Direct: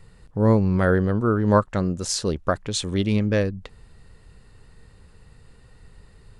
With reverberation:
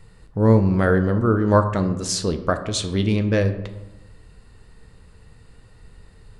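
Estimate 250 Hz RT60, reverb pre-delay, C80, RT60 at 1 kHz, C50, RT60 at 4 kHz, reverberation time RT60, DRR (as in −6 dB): 1.3 s, 4 ms, 13.0 dB, 0.90 s, 11.0 dB, 0.55 s, 1.0 s, 7.5 dB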